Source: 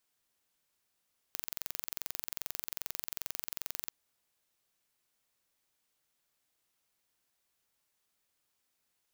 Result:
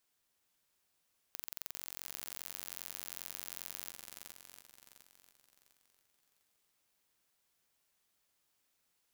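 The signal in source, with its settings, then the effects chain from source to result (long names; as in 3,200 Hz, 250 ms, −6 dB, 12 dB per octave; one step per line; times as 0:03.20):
impulse train 22.5 per second, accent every 0, −9.5 dBFS 2.56 s
brickwall limiter −14 dBFS
on a send: feedback echo with a long and a short gap by turns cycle 702 ms, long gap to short 1.5 to 1, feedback 32%, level −6.5 dB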